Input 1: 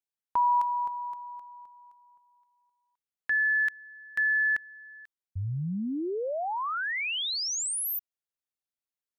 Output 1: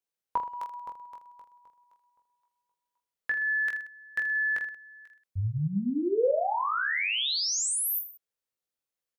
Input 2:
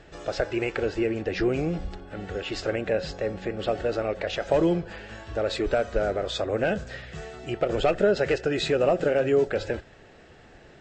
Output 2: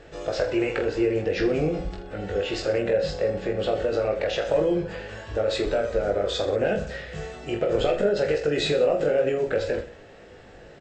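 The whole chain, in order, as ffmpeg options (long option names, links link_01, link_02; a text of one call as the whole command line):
ffmpeg -i in.wav -af "equalizer=frequency=500:width_type=o:width=0.43:gain=7,acompressor=threshold=-22dB:ratio=3:attack=7.2:release=110:knee=1,aecho=1:1:20|46|79.8|123.7|180.9:0.631|0.398|0.251|0.158|0.1" out.wav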